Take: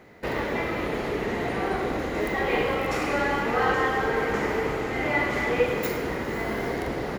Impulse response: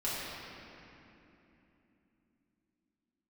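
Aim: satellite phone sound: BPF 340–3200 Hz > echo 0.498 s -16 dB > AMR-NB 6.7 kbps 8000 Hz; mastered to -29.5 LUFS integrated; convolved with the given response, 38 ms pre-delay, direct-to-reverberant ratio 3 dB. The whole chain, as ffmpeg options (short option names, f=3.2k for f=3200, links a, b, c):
-filter_complex "[0:a]asplit=2[a][b];[1:a]atrim=start_sample=2205,adelay=38[c];[b][c]afir=irnorm=-1:irlink=0,volume=-10dB[d];[a][d]amix=inputs=2:normalize=0,highpass=340,lowpass=3.2k,aecho=1:1:498:0.158,volume=-1.5dB" -ar 8000 -c:a libopencore_amrnb -b:a 6700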